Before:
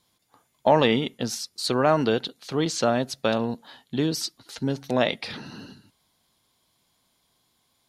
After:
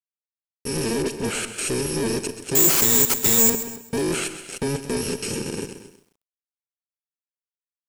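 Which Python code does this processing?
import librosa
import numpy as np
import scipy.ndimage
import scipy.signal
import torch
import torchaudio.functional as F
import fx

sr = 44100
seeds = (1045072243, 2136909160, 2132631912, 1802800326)

y = fx.bit_reversed(x, sr, seeds[0], block=64)
y = fx.fuzz(y, sr, gain_db=42.0, gate_db=-40.0)
y = fx.graphic_eq_15(y, sr, hz=(400, 1000, 4000), db=(12, -5, -6))
y = np.clip(10.0 ** (14.5 / 20.0) * y, -1.0, 1.0) / 10.0 ** (14.5 / 20.0)
y = scipy.signal.sosfilt(scipy.signal.butter(6, 10000.0, 'lowpass', fs=sr, output='sos'), y)
y = fx.notch(y, sr, hz=1100.0, q=6.5)
y = y + 10.0 ** (-15.5 / 20.0) * np.pad(y, (int(228 * sr / 1000.0), 0))[:len(y)]
y = fx.vibrato(y, sr, rate_hz=6.6, depth_cents=30.0)
y = fx.dispersion(y, sr, late='highs', ms=41.0, hz=2000.0, at=(1.02, 1.45))
y = fx.resample_bad(y, sr, factor=6, down='none', up='zero_stuff', at=(2.55, 3.5))
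y = fx.echo_crushed(y, sr, ms=131, feedback_pct=35, bits=8, wet_db=-12.0)
y = y * librosa.db_to_amplitude(-6.0)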